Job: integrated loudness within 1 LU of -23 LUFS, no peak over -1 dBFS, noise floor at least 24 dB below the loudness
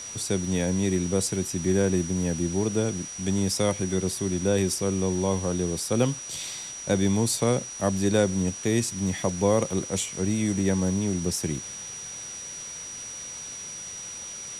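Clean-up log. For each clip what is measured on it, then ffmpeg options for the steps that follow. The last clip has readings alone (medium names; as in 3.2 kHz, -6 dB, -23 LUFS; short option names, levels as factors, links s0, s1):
steady tone 5.8 kHz; tone level -36 dBFS; noise floor -38 dBFS; noise floor target -51 dBFS; loudness -26.5 LUFS; peak level -9.5 dBFS; loudness target -23.0 LUFS
-> -af "bandreject=f=5800:w=30"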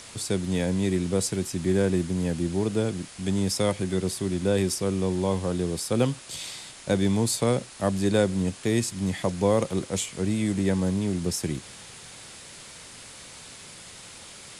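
steady tone not found; noise floor -45 dBFS; noise floor target -51 dBFS
-> -af "afftdn=nr=6:nf=-45"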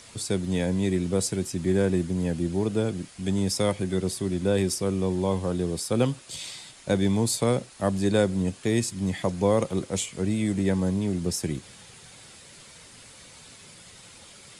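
noise floor -49 dBFS; noise floor target -51 dBFS
-> -af "afftdn=nr=6:nf=-49"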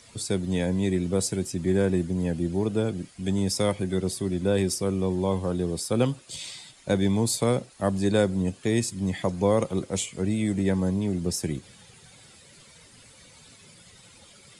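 noise floor -53 dBFS; loudness -26.5 LUFS; peak level -9.5 dBFS; loudness target -23.0 LUFS
-> -af "volume=1.5"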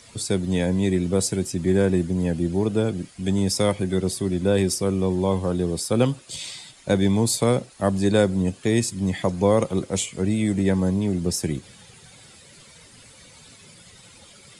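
loudness -23.0 LUFS; peak level -6.0 dBFS; noise floor -49 dBFS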